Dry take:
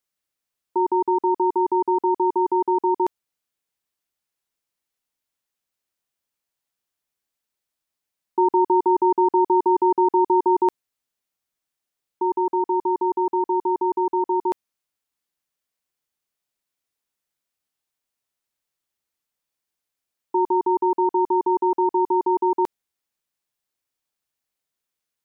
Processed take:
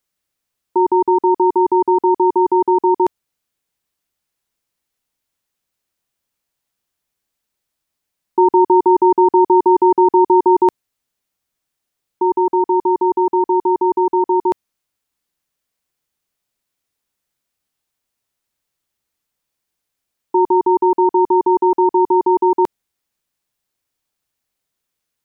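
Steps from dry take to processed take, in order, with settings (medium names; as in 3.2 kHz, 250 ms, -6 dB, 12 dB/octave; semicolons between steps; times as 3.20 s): bass shelf 250 Hz +5 dB; trim +5.5 dB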